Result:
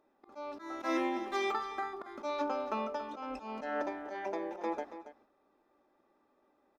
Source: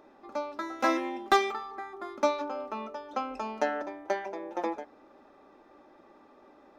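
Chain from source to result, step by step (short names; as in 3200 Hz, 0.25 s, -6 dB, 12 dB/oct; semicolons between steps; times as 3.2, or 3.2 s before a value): gate -52 dBFS, range -17 dB; auto swell 0.193 s; echo 0.279 s -12.5 dB; gain +1.5 dB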